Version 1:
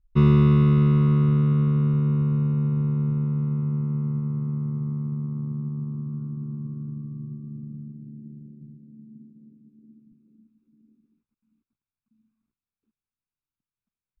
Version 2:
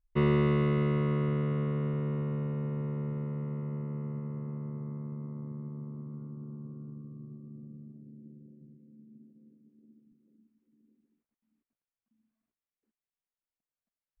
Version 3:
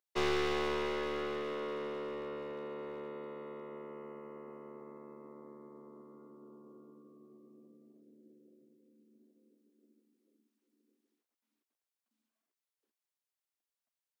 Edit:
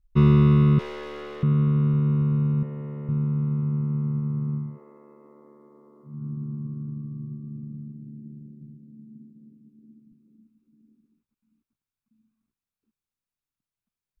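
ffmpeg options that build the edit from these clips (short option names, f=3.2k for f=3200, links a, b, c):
-filter_complex "[2:a]asplit=2[a][b];[0:a]asplit=4[c][d][e][f];[c]atrim=end=0.792[g];[a]atrim=start=0.788:end=1.432[h];[d]atrim=start=1.428:end=2.632[i];[1:a]atrim=start=2.628:end=3.092[j];[e]atrim=start=3.088:end=4.79[k];[b]atrim=start=4.55:end=6.27[l];[f]atrim=start=6.03[m];[g][h]acrossfade=d=0.004:c1=hsin:c2=hsin[n];[n][i]acrossfade=d=0.004:c1=hsin:c2=hsin[o];[o][j]acrossfade=d=0.004:c1=hsin:c2=hsin[p];[p][k]acrossfade=d=0.004:c1=hsin:c2=hsin[q];[q][l]acrossfade=d=0.24:c1=tri:c2=tri[r];[r][m]acrossfade=d=0.24:c1=tri:c2=tri"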